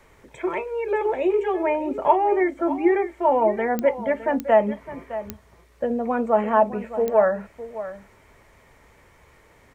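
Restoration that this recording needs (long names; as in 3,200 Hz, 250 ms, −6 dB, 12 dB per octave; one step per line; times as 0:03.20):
click removal
echo removal 611 ms −13.5 dB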